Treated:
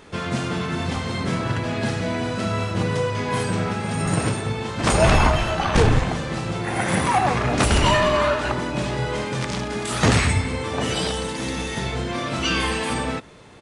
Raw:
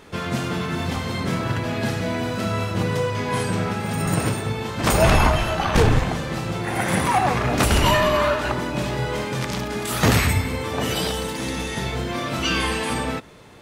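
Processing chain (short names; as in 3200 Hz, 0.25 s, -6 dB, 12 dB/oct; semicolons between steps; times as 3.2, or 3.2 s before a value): downsampling 22050 Hz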